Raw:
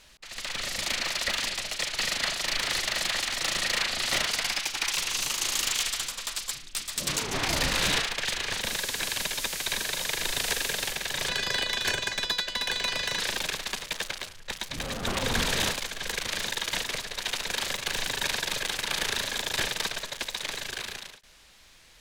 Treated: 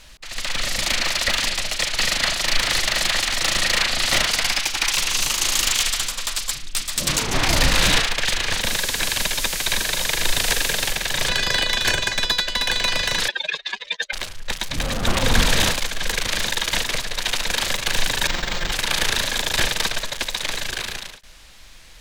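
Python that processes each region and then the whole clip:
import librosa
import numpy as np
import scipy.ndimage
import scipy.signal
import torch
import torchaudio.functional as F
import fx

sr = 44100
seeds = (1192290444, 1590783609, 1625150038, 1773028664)

y = fx.chain(x, sr, fx.spec_expand(power=3.1),
    fx.highpass(hz=330.0, slope=12), at=(13.28, 14.13))
y = fx.chain(y, sr, fx.lower_of_two(delay_ms=5.7),
    fx.notch(hz=2600.0, q=14.0),
    fx.resample_linear(factor=4), at=(18.27, 18.72))
y = fx.low_shelf(y, sr, hz=62.0, db=10.5)
y = fx.notch(y, sr, hz=410.0, q=12.0)
y = y * 10.0 ** (7.5 / 20.0)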